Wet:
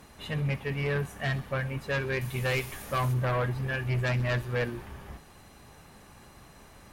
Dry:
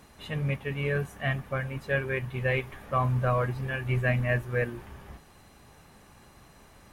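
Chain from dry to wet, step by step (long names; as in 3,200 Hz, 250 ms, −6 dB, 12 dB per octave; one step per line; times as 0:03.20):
0:02.21–0:03.14: bass and treble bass 0 dB, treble +15 dB
in parallel at −10.5 dB: sine wavefolder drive 11 dB, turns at −13.5 dBFS
on the sum: delay with a high-pass on its return 64 ms, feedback 67%, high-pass 3,900 Hz, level −12 dB
level −6.5 dB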